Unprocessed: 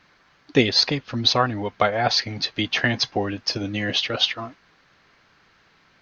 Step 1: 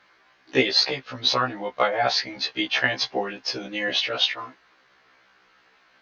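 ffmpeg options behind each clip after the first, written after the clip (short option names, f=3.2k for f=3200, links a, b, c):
-af "bass=f=250:g=-13,treble=f=4k:g=-4,afftfilt=real='re*1.73*eq(mod(b,3),0)':imag='im*1.73*eq(mod(b,3),0)':win_size=2048:overlap=0.75,volume=2.5dB"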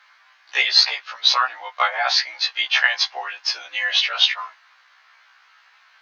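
-af "highpass=f=870:w=0.5412,highpass=f=870:w=1.3066,volume=5.5dB"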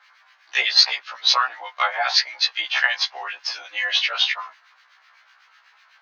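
-filter_complex "[0:a]acrossover=split=1400[a][b];[a]aeval=exprs='val(0)*(1-0.7/2+0.7/2*cos(2*PI*8*n/s))':c=same[c];[b]aeval=exprs='val(0)*(1-0.7/2-0.7/2*cos(2*PI*8*n/s))':c=same[d];[c][d]amix=inputs=2:normalize=0,volume=2.5dB"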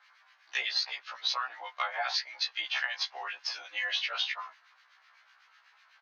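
-af "acompressor=threshold=-21dB:ratio=6,aresample=32000,aresample=44100,volume=-7dB"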